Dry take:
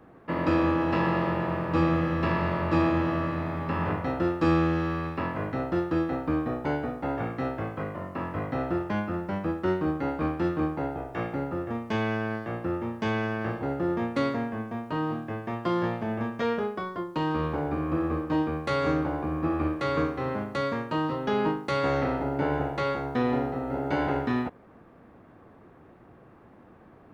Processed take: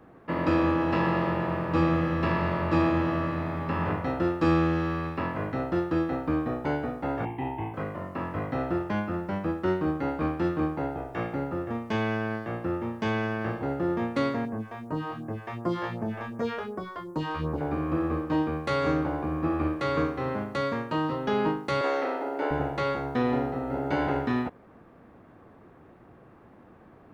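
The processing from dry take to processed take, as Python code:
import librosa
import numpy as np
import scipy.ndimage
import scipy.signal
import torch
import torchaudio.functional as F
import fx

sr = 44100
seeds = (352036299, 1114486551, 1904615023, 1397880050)

y = fx.curve_eq(x, sr, hz=(130.0, 190.0, 360.0, 560.0, 910.0, 1300.0, 2000.0, 3100.0, 4700.0, 9100.0), db=(0, -8, 3, -17, 12, -24, -1, 2, -30, -1), at=(7.25, 7.74))
y = fx.phaser_stages(y, sr, stages=2, low_hz=170.0, high_hz=3300.0, hz=2.7, feedback_pct=25, at=(14.45, 17.61))
y = fx.highpass(y, sr, hz=320.0, slope=24, at=(21.81, 22.51))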